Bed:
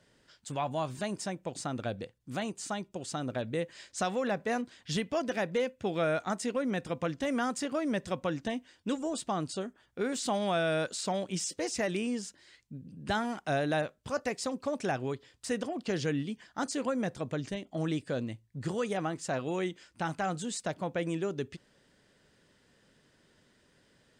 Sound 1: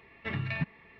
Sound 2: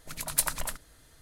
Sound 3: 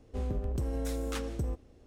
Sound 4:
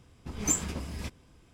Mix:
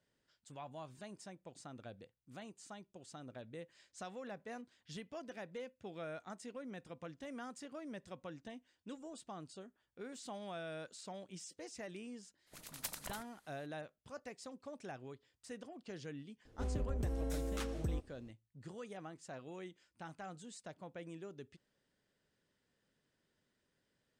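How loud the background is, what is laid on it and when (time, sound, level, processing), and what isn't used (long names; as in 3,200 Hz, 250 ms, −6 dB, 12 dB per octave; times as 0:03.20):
bed −16 dB
0:12.46: mix in 2 −16.5 dB, fades 0.02 s + ceiling on every frequency bin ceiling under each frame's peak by 21 dB
0:16.45: mix in 3 −5 dB
not used: 1, 4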